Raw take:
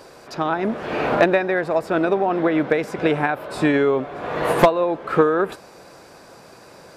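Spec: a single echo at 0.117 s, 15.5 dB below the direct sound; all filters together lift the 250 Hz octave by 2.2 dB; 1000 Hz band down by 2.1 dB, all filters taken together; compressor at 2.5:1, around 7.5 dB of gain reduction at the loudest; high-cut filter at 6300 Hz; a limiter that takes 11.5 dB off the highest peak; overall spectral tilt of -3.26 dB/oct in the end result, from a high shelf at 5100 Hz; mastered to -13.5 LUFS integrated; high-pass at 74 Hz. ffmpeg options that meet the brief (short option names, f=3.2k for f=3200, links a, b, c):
-af "highpass=74,lowpass=6.3k,equalizer=f=250:t=o:g=3.5,equalizer=f=1k:t=o:g=-3,highshelf=f=5.1k:g=-6.5,acompressor=threshold=-21dB:ratio=2.5,alimiter=limit=-19.5dB:level=0:latency=1,aecho=1:1:117:0.168,volume=15.5dB"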